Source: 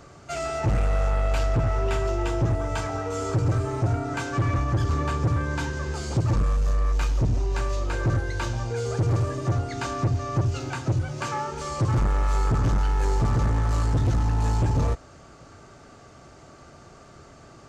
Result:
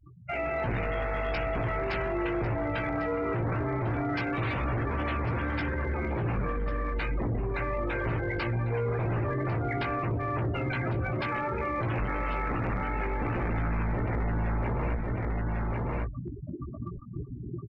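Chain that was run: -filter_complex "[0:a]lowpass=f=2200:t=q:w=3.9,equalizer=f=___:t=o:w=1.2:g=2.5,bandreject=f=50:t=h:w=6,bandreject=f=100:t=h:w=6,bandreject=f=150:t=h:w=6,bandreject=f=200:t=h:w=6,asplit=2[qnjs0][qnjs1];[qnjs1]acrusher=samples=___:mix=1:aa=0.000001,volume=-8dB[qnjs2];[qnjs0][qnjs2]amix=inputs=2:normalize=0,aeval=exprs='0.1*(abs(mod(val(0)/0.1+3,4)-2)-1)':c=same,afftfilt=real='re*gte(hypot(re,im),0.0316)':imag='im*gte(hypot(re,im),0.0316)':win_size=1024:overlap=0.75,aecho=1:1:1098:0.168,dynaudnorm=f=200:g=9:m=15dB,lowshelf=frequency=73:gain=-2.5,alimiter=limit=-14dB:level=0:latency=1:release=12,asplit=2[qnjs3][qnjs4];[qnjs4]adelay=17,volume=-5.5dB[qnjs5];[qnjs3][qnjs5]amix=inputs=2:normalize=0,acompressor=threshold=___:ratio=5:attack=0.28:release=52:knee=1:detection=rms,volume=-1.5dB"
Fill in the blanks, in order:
210, 30, -25dB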